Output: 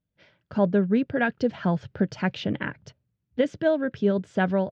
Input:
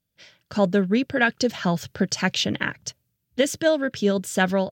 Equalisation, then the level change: tape spacing loss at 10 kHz 36 dB; 0.0 dB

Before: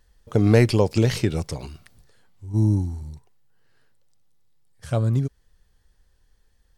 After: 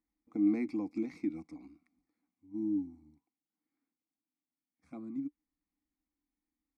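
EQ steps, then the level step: vowel filter u; fixed phaser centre 600 Hz, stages 8; 0.0 dB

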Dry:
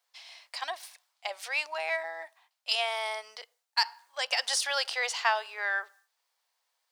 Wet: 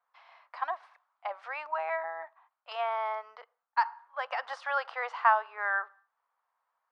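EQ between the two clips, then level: synth low-pass 1200 Hz, resonance Q 2.7; low shelf 390 Hz -8.5 dB; 0.0 dB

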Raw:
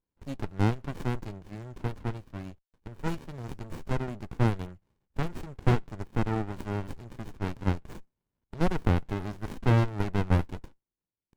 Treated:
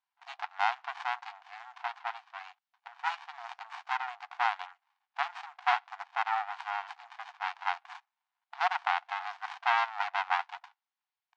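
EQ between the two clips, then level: brick-wall FIR high-pass 690 Hz; LPF 4500 Hz 12 dB/oct; air absorption 78 m; +8.0 dB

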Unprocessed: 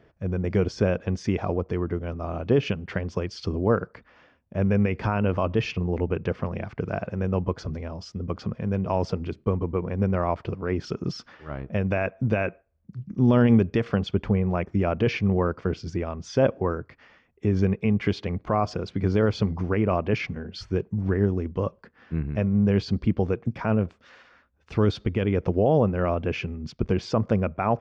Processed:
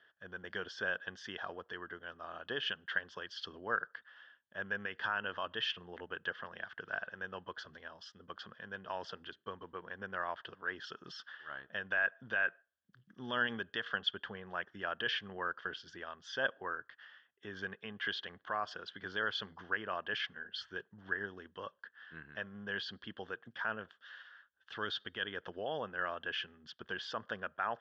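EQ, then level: double band-pass 2300 Hz, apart 0.94 oct; +5.5 dB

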